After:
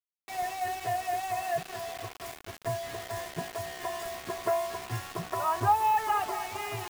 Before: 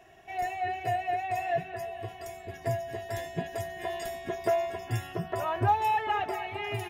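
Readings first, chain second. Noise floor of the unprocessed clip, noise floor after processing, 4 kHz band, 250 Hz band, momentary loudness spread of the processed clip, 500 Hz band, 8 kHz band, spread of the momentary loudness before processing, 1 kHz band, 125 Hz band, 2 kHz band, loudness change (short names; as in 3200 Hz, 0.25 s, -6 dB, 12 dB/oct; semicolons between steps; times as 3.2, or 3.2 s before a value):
-48 dBFS, -59 dBFS, +2.0 dB, -4.0 dB, 13 LU, -2.0 dB, +7.0 dB, 11 LU, +1.0 dB, -4.5 dB, -1.5 dB, 0.0 dB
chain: bell 1100 Hz +13 dB 0.65 oct; requantised 6-bit, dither none; gain -4.5 dB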